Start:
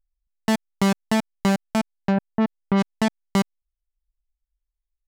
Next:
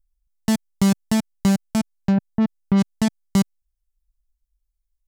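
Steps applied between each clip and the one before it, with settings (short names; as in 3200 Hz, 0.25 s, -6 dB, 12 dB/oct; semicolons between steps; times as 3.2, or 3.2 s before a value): tone controls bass +12 dB, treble +10 dB; gain -5 dB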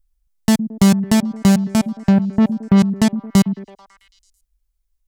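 delay with a stepping band-pass 0.11 s, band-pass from 220 Hz, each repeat 0.7 oct, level -9 dB; gain +5.5 dB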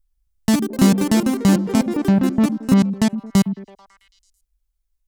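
echoes that change speed 0.177 s, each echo +5 st, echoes 3, each echo -6 dB; gain -2.5 dB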